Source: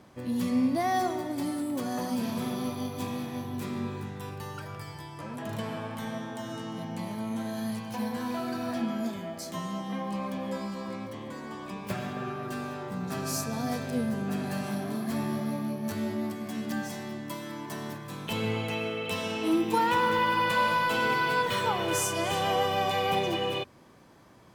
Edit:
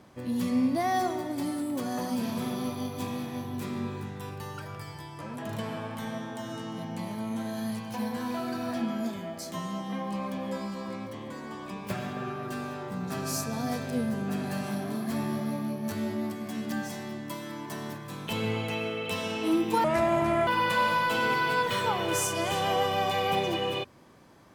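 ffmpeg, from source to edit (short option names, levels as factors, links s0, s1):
-filter_complex "[0:a]asplit=3[s0][s1][s2];[s0]atrim=end=19.844[s3];[s1]atrim=start=19.84:end=20.27,asetpts=PTS-STARTPTS,asetrate=29988,aresample=44100[s4];[s2]atrim=start=20.266[s5];[s3][s4]acrossfade=d=0.004:c1=hsin:c2=hsin[s6];[s6][s5]acrossfade=d=0.004:c1=hsin:c2=hsin"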